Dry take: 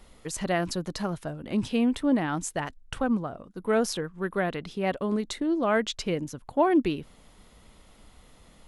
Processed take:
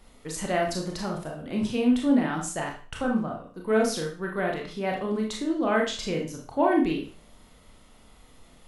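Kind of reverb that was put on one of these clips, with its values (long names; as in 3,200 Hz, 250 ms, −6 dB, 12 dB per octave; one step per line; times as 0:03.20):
four-comb reverb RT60 0.4 s, combs from 25 ms, DRR −0.5 dB
level −2.5 dB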